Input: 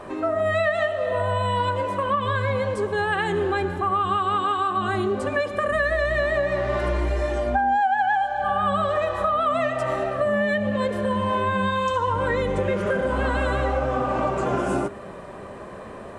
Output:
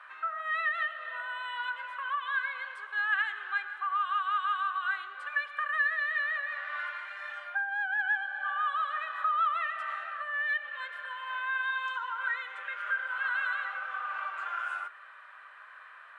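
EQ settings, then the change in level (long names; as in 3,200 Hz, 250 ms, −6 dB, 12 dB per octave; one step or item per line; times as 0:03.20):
four-pole ladder high-pass 1,300 Hz, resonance 65%
high shelf with overshoot 4,500 Hz −9.5 dB, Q 1.5
0.0 dB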